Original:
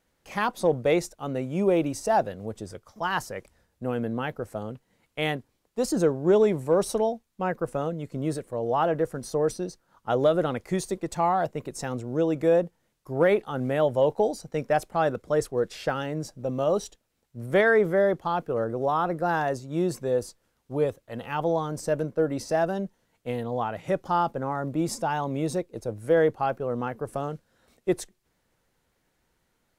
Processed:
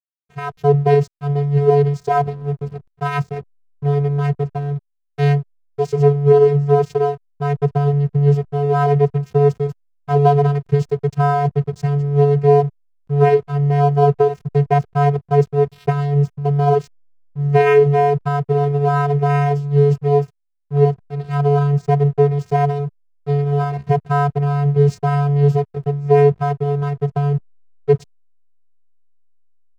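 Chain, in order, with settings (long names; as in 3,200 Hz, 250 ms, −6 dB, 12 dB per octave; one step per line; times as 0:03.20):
channel vocoder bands 8, square 143 Hz
slack as between gear wheels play −41 dBFS
automatic gain control gain up to 11 dB
level +1 dB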